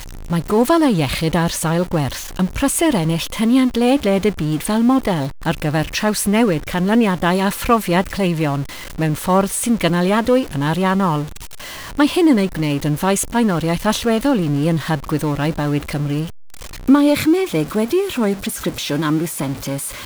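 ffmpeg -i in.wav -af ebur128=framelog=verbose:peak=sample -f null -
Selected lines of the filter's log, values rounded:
Integrated loudness:
  I:         -17.8 LUFS
  Threshold: -28.0 LUFS
Loudness range:
  LRA:         1.2 LU
  Threshold: -37.9 LUFS
  LRA low:   -18.4 LUFS
  LRA high:  -17.2 LUFS
Sample peak:
  Peak:       -2.7 dBFS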